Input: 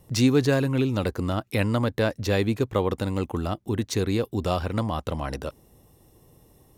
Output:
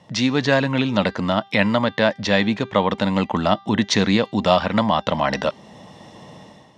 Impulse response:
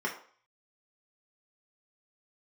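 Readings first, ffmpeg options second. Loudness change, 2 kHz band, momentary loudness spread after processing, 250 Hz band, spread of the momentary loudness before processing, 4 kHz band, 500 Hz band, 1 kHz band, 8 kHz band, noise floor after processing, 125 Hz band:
+5.5 dB, +10.5 dB, 3 LU, +5.5 dB, 9 LU, +10.0 dB, +5.5 dB, +10.5 dB, +3.5 dB, −49 dBFS, 0.0 dB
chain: -filter_complex "[0:a]asplit=2[link_01][link_02];[link_02]acompressor=threshold=-36dB:ratio=6,volume=2dB[link_03];[link_01][link_03]amix=inputs=2:normalize=0,highpass=190,equalizer=frequency=200:width_type=q:width=4:gain=8,equalizer=frequency=380:width_type=q:width=4:gain=-4,equalizer=frequency=620:width_type=q:width=4:gain=7,equalizer=frequency=920:width_type=q:width=4:gain=6,equalizer=frequency=1900:width_type=q:width=4:gain=7,equalizer=frequency=3300:width_type=q:width=4:gain=6,lowpass=frequency=5900:width=0.5412,lowpass=frequency=5900:width=1.3066,dynaudnorm=framelen=110:gausssize=7:maxgain=10.5dB,equalizer=frequency=390:width=1:gain=-6,bandreject=frequency=394.8:width_type=h:width=4,bandreject=frequency=789.6:width_type=h:width=4,bandreject=frequency=1184.4:width_type=h:width=4,bandreject=frequency=1579.2:width_type=h:width=4,bandreject=frequency=1974:width_type=h:width=4,bandreject=frequency=2368.8:width_type=h:width=4,bandreject=frequency=2763.6:width_type=h:width=4,bandreject=frequency=3158.4:width_type=h:width=4,bandreject=frequency=3553.2:width_type=h:width=4,bandreject=frequency=3948:width_type=h:width=4,bandreject=frequency=4342.8:width_type=h:width=4,bandreject=frequency=4737.6:width_type=h:width=4,bandreject=frequency=5132.4:width_type=h:width=4,bandreject=frequency=5527.2:width_type=h:width=4,bandreject=frequency=5922:width_type=h:width=4,bandreject=frequency=6316.8:width_type=h:width=4,bandreject=frequency=6711.6:width_type=h:width=4,volume=1dB"

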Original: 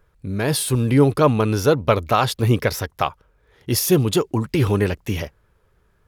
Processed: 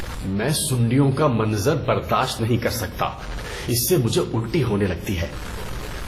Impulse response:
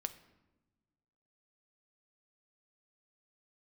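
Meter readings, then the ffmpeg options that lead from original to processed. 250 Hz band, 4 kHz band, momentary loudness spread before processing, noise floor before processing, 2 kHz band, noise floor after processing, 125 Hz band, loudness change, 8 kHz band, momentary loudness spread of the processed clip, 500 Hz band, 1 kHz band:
−1.5 dB, 0.0 dB, 10 LU, −62 dBFS, −1.0 dB, −32 dBFS, −1.5 dB, −2.0 dB, 0.0 dB, 12 LU, −3.0 dB, −2.0 dB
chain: -filter_complex "[0:a]aeval=exprs='val(0)+0.5*0.0335*sgn(val(0))':channel_layout=same,asplit=2[link_01][link_02];[link_02]acompressor=threshold=-25dB:ratio=6,volume=1dB[link_03];[link_01][link_03]amix=inputs=2:normalize=0,aeval=exprs='val(0)*gte(abs(val(0)),0.0316)':channel_layout=same,flanger=delay=3.5:depth=5.1:regen=-54:speed=0.39:shape=sinusoidal,aeval=exprs='val(0)+0.0112*(sin(2*PI*60*n/s)+sin(2*PI*2*60*n/s)/2+sin(2*PI*3*60*n/s)/3+sin(2*PI*4*60*n/s)/4+sin(2*PI*5*60*n/s)/5)':channel_layout=same,acompressor=mode=upward:threshold=-24dB:ratio=2.5[link_04];[1:a]atrim=start_sample=2205[link_05];[link_04][link_05]afir=irnorm=-1:irlink=0" -ar 32000 -c:a wmav2 -b:a 32k

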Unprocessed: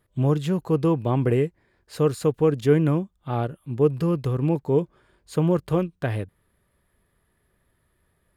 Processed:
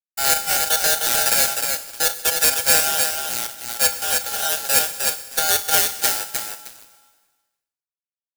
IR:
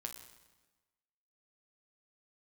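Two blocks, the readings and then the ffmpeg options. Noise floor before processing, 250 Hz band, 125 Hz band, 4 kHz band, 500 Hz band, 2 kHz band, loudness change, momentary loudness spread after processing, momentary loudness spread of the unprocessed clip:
−70 dBFS, −18.5 dB, −22.0 dB, +23.0 dB, −7.5 dB, +16.5 dB, +6.0 dB, 9 LU, 10 LU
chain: -filter_complex "[0:a]equalizer=frequency=3600:width=0.33:gain=-14.5,acrusher=samples=12:mix=1:aa=0.000001:lfo=1:lforange=7.2:lforate=0.87,afreqshift=150,equalizer=frequency=100:width=1.1:gain=-12.5,aecho=1:1:308|616|924:0.596|0.131|0.0288,aeval=exprs='sgn(val(0))*max(abs(val(0))-0.0075,0)':channel_layout=same,asplit=2[link_01][link_02];[1:a]atrim=start_sample=2205,highshelf=frequency=3900:gain=9[link_03];[link_02][link_03]afir=irnorm=-1:irlink=0,volume=1.5dB[link_04];[link_01][link_04]amix=inputs=2:normalize=0,aexciter=amount=8.6:drive=3.7:freq=3200,dynaudnorm=framelen=180:gausssize=7:maxgain=8dB,aeval=exprs='val(0)*sgn(sin(2*PI*1100*n/s))':channel_layout=same,volume=-1dB"

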